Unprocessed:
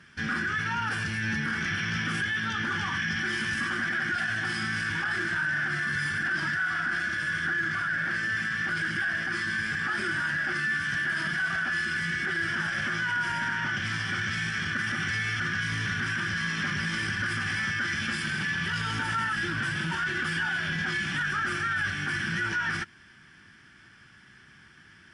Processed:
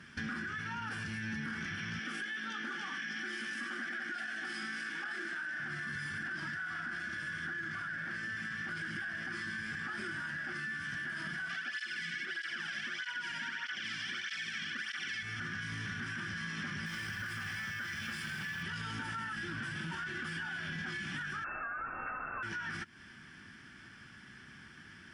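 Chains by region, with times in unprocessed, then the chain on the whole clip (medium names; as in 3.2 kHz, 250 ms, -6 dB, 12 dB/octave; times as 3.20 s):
1.99–5.60 s: high-pass 240 Hz 24 dB/octave + band-stop 1 kHz, Q 6.2
11.49–15.23 s: frequency weighting D + cancelling through-zero flanger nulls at 1.6 Hz, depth 2.4 ms
16.86–18.63 s: peaking EQ 270 Hz -7.5 dB 1 oct + word length cut 8-bit, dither none
21.44–22.43 s: brick-wall FIR high-pass 280 Hz + frequency inversion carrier 3 kHz
whole clip: compression, threshold -38 dBFS; peaking EQ 240 Hz +5 dB 0.59 oct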